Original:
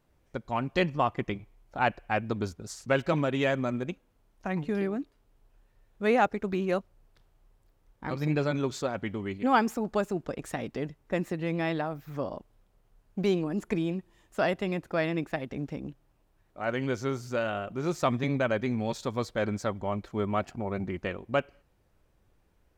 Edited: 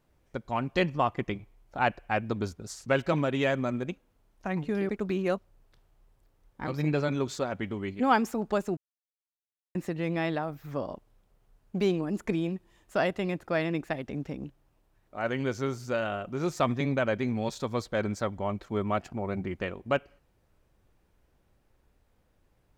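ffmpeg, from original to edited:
-filter_complex "[0:a]asplit=4[a][b][c][d];[a]atrim=end=4.892[e];[b]atrim=start=6.318:end=10.2,asetpts=PTS-STARTPTS,afade=t=out:st=3.878:d=0.004:c=hsin[f];[c]atrim=start=10.2:end=11.18,asetpts=PTS-STARTPTS,volume=0[g];[d]atrim=start=11.18,asetpts=PTS-STARTPTS,afade=t=in:d=0.004:c=hsin[h];[f][g][h]concat=n=3:v=0:a=1[i];[e][i]acrossfade=d=0.004:c1=hsin:c2=hsin"

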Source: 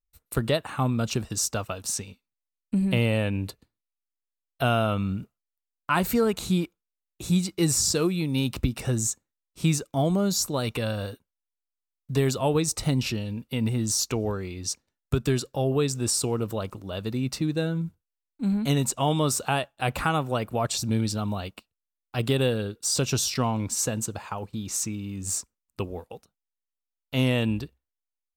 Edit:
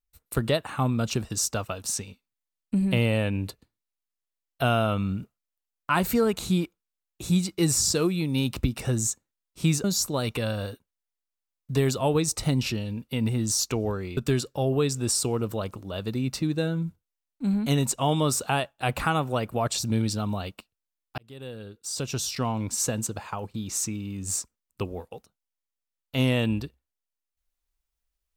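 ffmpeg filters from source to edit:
-filter_complex "[0:a]asplit=4[a][b][c][d];[a]atrim=end=9.842[e];[b]atrim=start=10.238:end=14.572[f];[c]atrim=start=15.158:end=22.17,asetpts=PTS-STARTPTS,afade=t=out:st=7.008:d=0.004:c=hsin[g];[d]atrim=start=22.17,asetpts=PTS-STARTPTS,afade=t=in:d=1.66[h];[e][f]acrossfade=d=0.004:c1=hsin:c2=hsin[i];[g][h]concat=n=2:v=0:a=1[j];[i][j]acrossfade=d=0.004:c1=hsin:c2=hsin"

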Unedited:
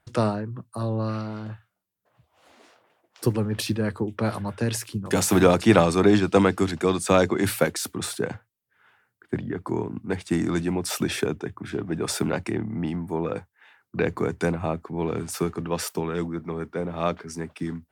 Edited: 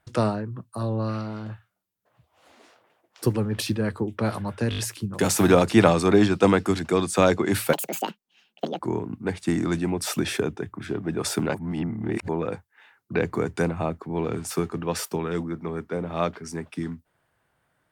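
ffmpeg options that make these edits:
-filter_complex "[0:a]asplit=9[a][b][c][d][e][f][g][h][i];[a]atrim=end=4.722[j];[b]atrim=start=4.698:end=4.722[k];[c]atrim=start=4.698:end=4.722[l];[d]atrim=start=4.698:end=4.722[m];[e]atrim=start=4.698:end=7.654[n];[f]atrim=start=7.65:end=9.63,asetpts=PTS-STARTPTS,asetrate=82026,aresample=44100,atrim=end_sample=46945,asetpts=PTS-STARTPTS[o];[g]atrim=start=9.626:end=12.382[p];[h]atrim=start=12.378:end=13.122,asetpts=PTS-STARTPTS,areverse[q];[i]atrim=start=13.118[r];[j][k]acrossfade=d=0.004:c1=hsin:c2=hsin[s];[s][l]acrossfade=d=0.004:c1=hsin:c2=hsin[t];[t][m]acrossfade=d=0.004:c1=hsin:c2=hsin[u];[u][n]acrossfade=d=0.004:c1=hsin:c2=hsin[v];[v][o]acrossfade=d=0.004:c1=hsin:c2=hsin[w];[w][p]acrossfade=d=0.004:c1=hsin:c2=hsin[x];[x][q]acrossfade=d=0.004:c1=hsin:c2=hsin[y];[y][r]acrossfade=d=0.004:c1=hsin:c2=hsin"

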